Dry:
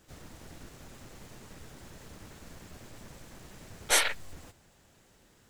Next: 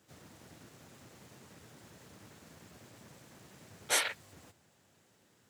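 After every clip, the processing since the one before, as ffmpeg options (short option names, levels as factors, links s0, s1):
-af "highpass=f=91:w=0.5412,highpass=f=91:w=1.3066,volume=0.562"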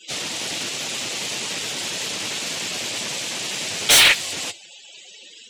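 -filter_complex "[0:a]highshelf=f=2100:t=q:w=1.5:g=8,asplit=2[s0][s1];[s1]highpass=f=720:p=1,volume=44.7,asoftclip=type=tanh:threshold=0.473[s2];[s0][s2]amix=inputs=2:normalize=0,lowpass=f=6900:p=1,volume=0.501,afftdn=nr=35:nf=-39,volume=1.26"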